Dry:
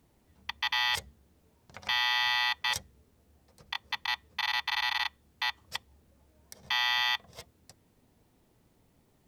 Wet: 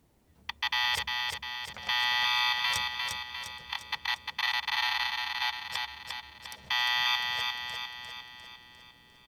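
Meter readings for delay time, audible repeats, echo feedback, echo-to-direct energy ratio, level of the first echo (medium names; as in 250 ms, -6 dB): 351 ms, 6, 53%, -2.5 dB, -4.0 dB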